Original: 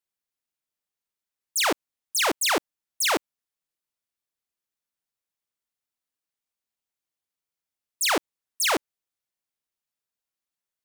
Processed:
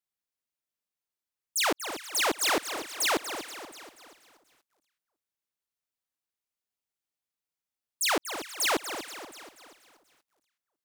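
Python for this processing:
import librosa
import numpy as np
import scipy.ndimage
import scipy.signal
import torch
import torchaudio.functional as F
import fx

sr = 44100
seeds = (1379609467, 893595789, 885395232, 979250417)

y = fx.echo_alternate(x, sr, ms=181, hz=1500.0, feedback_pct=58, wet_db=-12.5)
y = fx.echo_crushed(y, sr, ms=240, feedback_pct=55, bits=9, wet_db=-11)
y = y * librosa.db_to_amplitude(-3.5)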